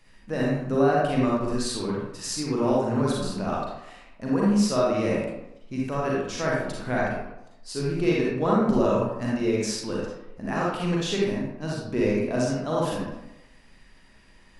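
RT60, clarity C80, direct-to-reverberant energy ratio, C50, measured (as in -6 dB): 0.90 s, 2.0 dB, -5.0 dB, -2.5 dB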